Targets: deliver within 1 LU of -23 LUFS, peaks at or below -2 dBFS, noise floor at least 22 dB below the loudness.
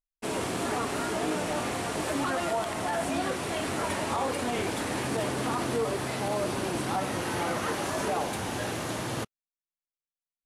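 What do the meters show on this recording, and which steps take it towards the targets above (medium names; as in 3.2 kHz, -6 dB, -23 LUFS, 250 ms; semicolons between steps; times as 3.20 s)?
loudness -30.5 LUFS; peak level -17.5 dBFS; loudness target -23.0 LUFS
-> trim +7.5 dB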